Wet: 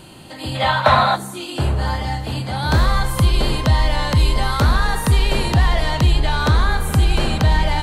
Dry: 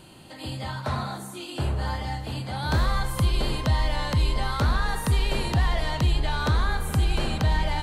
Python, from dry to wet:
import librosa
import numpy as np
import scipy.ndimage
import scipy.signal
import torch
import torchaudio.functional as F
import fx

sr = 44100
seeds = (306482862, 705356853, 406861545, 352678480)

y = fx.spec_box(x, sr, start_s=0.55, length_s=0.61, low_hz=510.0, high_hz=4200.0, gain_db=11)
y = fx.high_shelf(y, sr, hz=11000.0, db=7.5, at=(4.15, 4.87))
y = F.gain(torch.from_numpy(y), 7.5).numpy()